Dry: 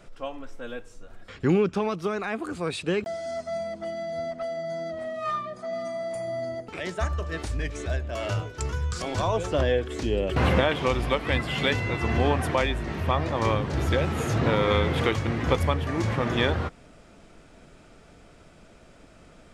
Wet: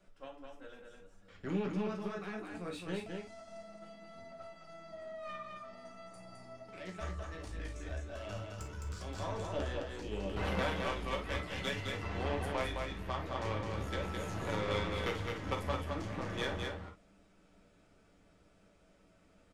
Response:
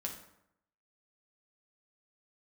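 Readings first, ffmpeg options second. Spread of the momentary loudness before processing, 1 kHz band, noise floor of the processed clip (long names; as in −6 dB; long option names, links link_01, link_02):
10 LU, −11.5 dB, −66 dBFS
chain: -filter_complex "[0:a]aeval=exprs='0.355*(cos(1*acos(clip(val(0)/0.355,-1,1)))-cos(1*PI/2))+0.0631*(cos(3*acos(clip(val(0)/0.355,-1,1)))-cos(3*PI/2))+0.0141*(cos(8*acos(clip(val(0)/0.355,-1,1)))-cos(8*PI/2))':channel_layout=same,acrossover=split=380|1400|3500[link_01][link_02][link_03][link_04];[link_01]asoftclip=type=tanh:threshold=-25dB[link_05];[link_05][link_02][link_03][link_04]amix=inputs=4:normalize=0,aecho=1:1:212:0.631[link_06];[1:a]atrim=start_sample=2205,atrim=end_sample=3087[link_07];[link_06][link_07]afir=irnorm=-1:irlink=0,volume=-8dB"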